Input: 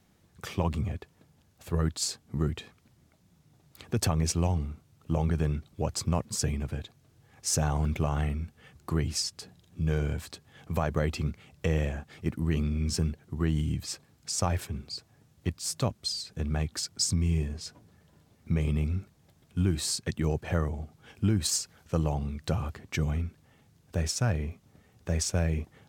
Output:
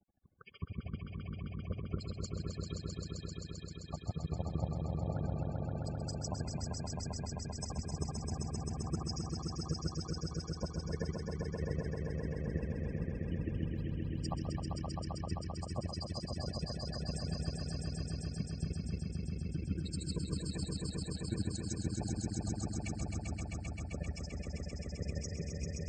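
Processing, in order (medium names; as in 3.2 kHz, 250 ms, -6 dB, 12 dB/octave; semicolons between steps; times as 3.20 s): granulator 40 ms, grains 13 per s, spray 189 ms, pitch spread up and down by 0 st; loudest bins only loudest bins 32; echo with a slow build-up 131 ms, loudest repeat 5, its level -4 dB; trim -6.5 dB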